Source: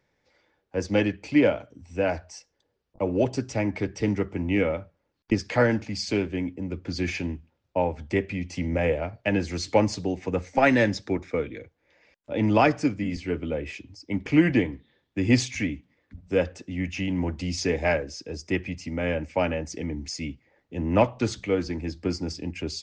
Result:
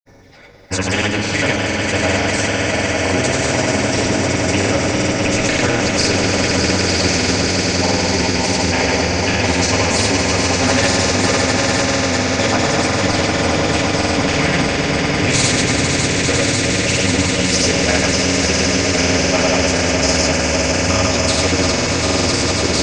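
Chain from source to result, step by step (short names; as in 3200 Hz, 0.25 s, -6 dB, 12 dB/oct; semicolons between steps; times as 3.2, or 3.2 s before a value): phaser stages 12, 2 Hz, lowest notch 270–3300 Hz; limiter -19.5 dBFS, peak gain reduction 11 dB; swelling echo 0.175 s, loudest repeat 5, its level -7.5 dB; reverb, pre-delay 3 ms, DRR -2.5 dB; grains, grains 20/s, pitch spread up and down by 0 st; notch 3100 Hz, Q 23; spectral compressor 2:1; gain +6 dB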